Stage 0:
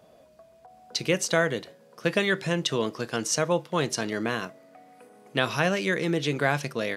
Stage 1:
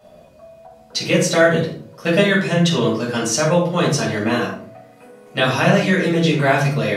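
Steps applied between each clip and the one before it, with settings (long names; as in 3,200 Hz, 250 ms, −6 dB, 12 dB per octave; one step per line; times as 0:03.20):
rectangular room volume 460 cubic metres, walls furnished, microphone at 6.6 metres
level −1 dB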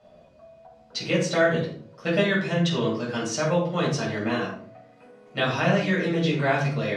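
low-pass filter 5,500 Hz 12 dB per octave
level −7 dB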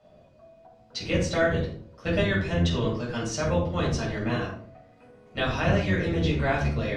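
sub-octave generator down 1 octave, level 0 dB
level −3 dB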